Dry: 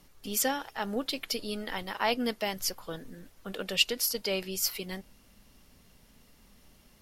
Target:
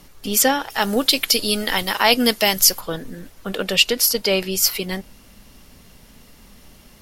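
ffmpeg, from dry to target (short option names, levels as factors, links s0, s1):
-filter_complex "[0:a]asettb=1/sr,asplit=3[s0][s1][s2];[s0]atrim=end=0.704[s3];[s1]atrim=start=0.7:end=2.81,asetpts=PTS-STARTPTS,afade=t=in:d=0.004:c=qsin,afade=t=out:st=2.106:d=0.004:c=qsin,highshelf=f=3400:g=12[s4];[s2]atrim=start=2.806[s5];[s3][s4]acrossfade=d=0.004:c1=hsin:c2=qsin[s6];[s6][s5]acrossfade=d=0.004:c1=qsin:c2=hsin,alimiter=level_in=4.47:limit=0.891:release=50:level=0:latency=1,volume=0.891"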